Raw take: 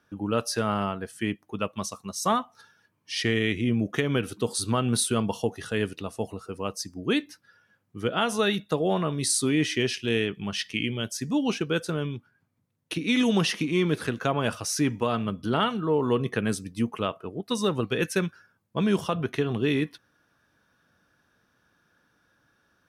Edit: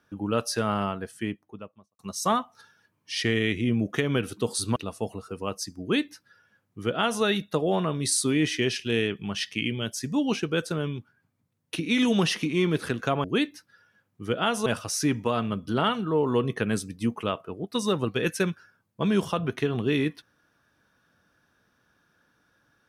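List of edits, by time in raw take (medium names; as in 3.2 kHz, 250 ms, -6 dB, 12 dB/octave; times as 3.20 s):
0.96–1.99 s: studio fade out
4.76–5.94 s: delete
6.99–8.41 s: copy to 14.42 s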